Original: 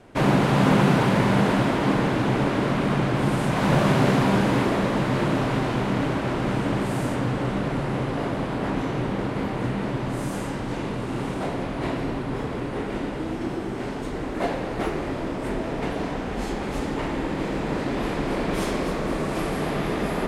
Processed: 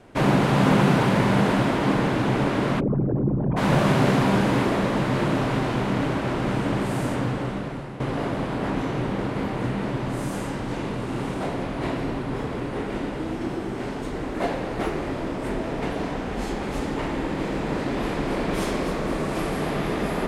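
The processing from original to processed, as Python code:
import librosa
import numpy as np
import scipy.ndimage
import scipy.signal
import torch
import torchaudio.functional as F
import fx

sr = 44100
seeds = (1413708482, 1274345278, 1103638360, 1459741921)

y = fx.envelope_sharpen(x, sr, power=3.0, at=(2.79, 3.56), fade=0.02)
y = fx.edit(y, sr, fx.fade_out_to(start_s=7.21, length_s=0.79, floor_db=-12.5), tone=tone)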